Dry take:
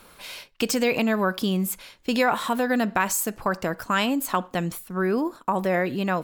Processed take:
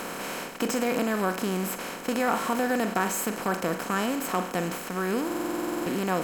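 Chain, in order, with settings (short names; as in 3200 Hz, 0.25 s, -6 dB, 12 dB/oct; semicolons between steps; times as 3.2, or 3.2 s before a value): per-bin compression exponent 0.2; spectral noise reduction 9 dB; stuck buffer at 5.26, samples 2048, times 12; gain -8 dB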